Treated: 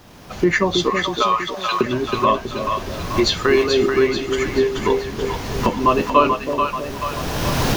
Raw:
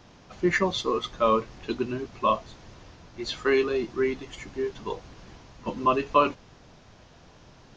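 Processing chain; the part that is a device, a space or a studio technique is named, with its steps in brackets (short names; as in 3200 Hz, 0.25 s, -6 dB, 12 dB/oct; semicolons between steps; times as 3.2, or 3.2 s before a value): 0.9–1.81 steep high-pass 660 Hz 48 dB/oct; cheap recorder with automatic gain (white noise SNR 37 dB; recorder AGC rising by 21 dB/s); split-band echo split 610 Hz, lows 0.322 s, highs 0.435 s, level -5 dB; gain +6 dB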